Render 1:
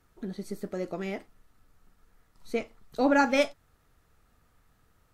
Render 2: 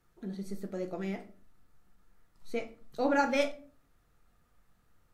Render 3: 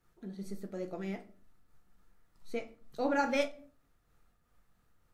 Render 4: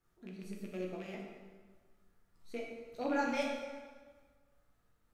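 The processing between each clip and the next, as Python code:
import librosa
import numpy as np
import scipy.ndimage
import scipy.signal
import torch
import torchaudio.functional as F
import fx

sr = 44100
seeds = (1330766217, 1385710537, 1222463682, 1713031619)

y1 = fx.room_shoebox(x, sr, seeds[0], volume_m3=310.0, walls='furnished', distance_m=0.85)
y1 = y1 * librosa.db_to_amplitude(-5.5)
y2 = fx.am_noise(y1, sr, seeds[1], hz=5.7, depth_pct=55)
y3 = fx.rattle_buzz(y2, sr, strikes_db=-41.0, level_db=-36.0)
y3 = fx.rev_plate(y3, sr, seeds[2], rt60_s=1.5, hf_ratio=0.8, predelay_ms=0, drr_db=-0.5)
y3 = y3 * librosa.db_to_amplitude(-6.0)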